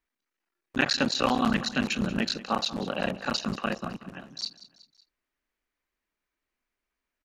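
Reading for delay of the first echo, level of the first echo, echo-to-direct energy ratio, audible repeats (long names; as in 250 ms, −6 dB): 186 ms, −17.0 dB, −15.5 dB, 3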